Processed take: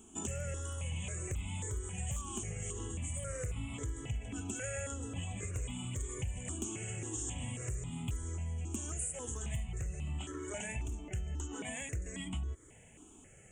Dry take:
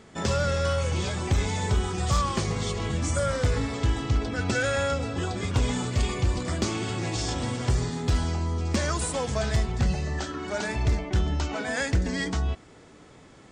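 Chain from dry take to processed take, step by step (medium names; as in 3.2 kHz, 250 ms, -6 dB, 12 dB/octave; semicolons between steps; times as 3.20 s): FFT filter 300 Hz 0 dB, 630 Hz -7 dB, 1.4 kHz -9 dB, 3 kHz +5 dB, 4.6 kHz -27 dB, 6.7 kHz +10 dB; compression, threshold -31 dBFS, peak gain reduction 11.5 dB; stepped phaser 3.7 Hz 530–1700 Hz; trim -2.5 dB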